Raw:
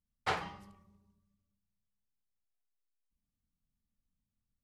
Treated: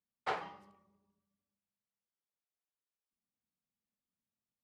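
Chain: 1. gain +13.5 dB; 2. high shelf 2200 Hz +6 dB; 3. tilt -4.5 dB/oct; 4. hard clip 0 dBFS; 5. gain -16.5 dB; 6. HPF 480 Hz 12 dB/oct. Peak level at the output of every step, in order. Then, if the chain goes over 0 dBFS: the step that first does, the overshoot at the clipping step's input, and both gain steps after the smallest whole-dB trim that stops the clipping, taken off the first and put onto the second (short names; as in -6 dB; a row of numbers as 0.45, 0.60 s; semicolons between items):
-6.0, -3.5, -2.5, -2.5, -19.0, -22.0 dBFS; no overload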